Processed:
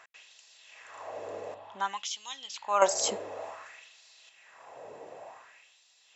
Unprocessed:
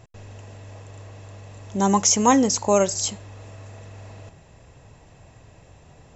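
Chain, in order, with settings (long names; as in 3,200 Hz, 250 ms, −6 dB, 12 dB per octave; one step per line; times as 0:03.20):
high-shelf EQ 2,100 Hz −11.5 dB
auto-filter high-pass sine 0.55 Hz 450–4,200 Hz
0:01.54–0:02.82: drawn EQ curve 110 Hz 0 dB, 500 Hz −10 dB, 840 Hz −5 dB, 2,200 Hz −10 dB, 3,300 Hz −1 dB, 6,000 Hz −19 dB
level +6 dB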